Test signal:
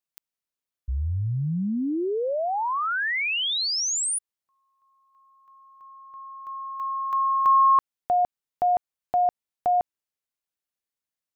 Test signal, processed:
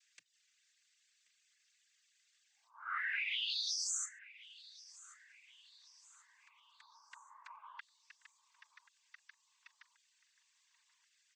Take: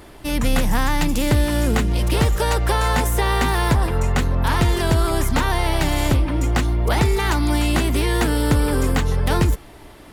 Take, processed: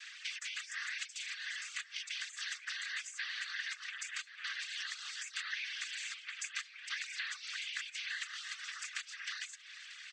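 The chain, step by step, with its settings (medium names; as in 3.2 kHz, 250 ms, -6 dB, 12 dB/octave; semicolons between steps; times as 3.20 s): word length cut 12-bit, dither triangular; steep high-pass 1.6 kHz 72 dB/octave; spectral gate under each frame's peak -20 dB strong; compression 5:1, threshold -43 dBFS; noise-vocoded speech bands 16; reverb removal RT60 0.51 s; on a send: feedback delay 1082 ms, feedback 48%, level -19.5 dB; on the sum: trim +4.5 dB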